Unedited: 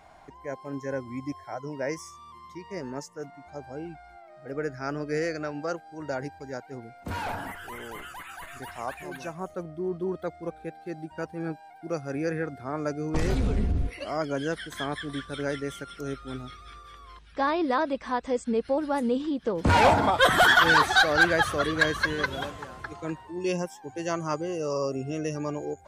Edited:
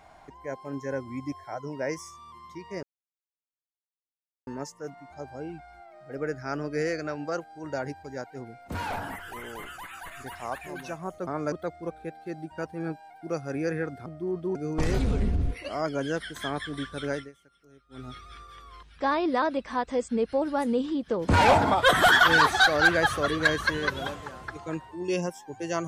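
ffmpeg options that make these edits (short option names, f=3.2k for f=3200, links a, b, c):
-filter_complex "[0:a]asplit=8[a][b][c][d][e][f][g][h];[a]atrim=end=2.83,asetpts=PTS-STARTPTS,afade=t=out:st=2.826:d=0.004:c=hsin,apad=pad_dur=1.64[i];[b]atrim=start=2.83:end=9.632,asetpts=PTS-STARTPTS,afade=t=in:d=0.004:c=hsin[j];[c]atrim=start=12.658:end=12.912[k];[d]atrim=start=10.118:end=12.662[l];[e]atrim=start=9.628:end=10.122[m];[f]atrim=start=12.908:end=15.68,asetpts=PTS-STARTPTS,afade=t=out:st=2.562:d=0.21:silence=0.0749894[n];[g]atrim=start=15.68:end=16.25,asetpts=PTS-STARTPTS,volume=-22.5dB[o];[h]atrim=start=16.25,asetpts=PTS-STARTPTS,afade=t=in:d=0.21:silence=0.0749894[p];[i][j]concat=n=2:v=0:a=1[q];[q][k]acrossfade=d=0.004:c1=hsin:c2=hsin[r];[r][l]acrossfade=d=0.004:c1=hsin:c2=hsin[s];[s][m]acrossfade=d=0.004:c1=hsin:c2=hsin[t];[n][o][p]concat=n=3:v=0:a=1[u];[t][u]acrossfade=d=0.004:c1=hsin:c2=hsin"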